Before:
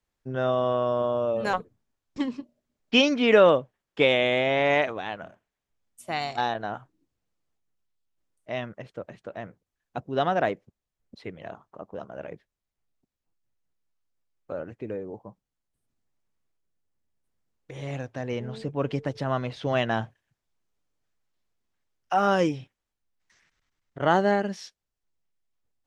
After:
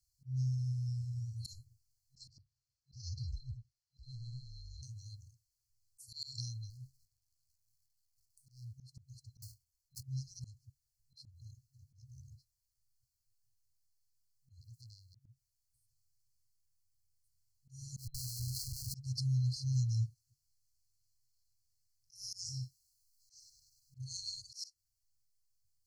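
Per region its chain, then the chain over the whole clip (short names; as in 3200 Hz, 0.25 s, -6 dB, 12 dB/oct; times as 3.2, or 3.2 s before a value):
2.28–4.83 BPF 320–5400 Hz + compressor 4:1, threshold -33 dBFS + ring modulator 380 Hz
6.7–8.73 compressor, threshold -47 dBFS + sample leveller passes 2
9.42–10.03 block floating point 3-bit + comb 2.8 ms, depth 64% + three-band expander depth 40%
14.61–15.16 high shelf 5200 Hz +11.5 dB + compressor 1.5:1, threshold -41 dBFS + core saturation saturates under 1900 Hz
17.97–18.95 low shelf 86 Hz -10 dB + compressor 5:1, threshold -32 dBFS + Schmitt trigger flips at -47.5 dBFS
22.41–24.42 doubler 40 ms -10 dB + mismatched tape noise reduction encoder only
whole clip: FFT band-reject 130–4100 Hz; low shelf 98 Hz -8.5 dB; auto swell 0.168 s; gain +7 dB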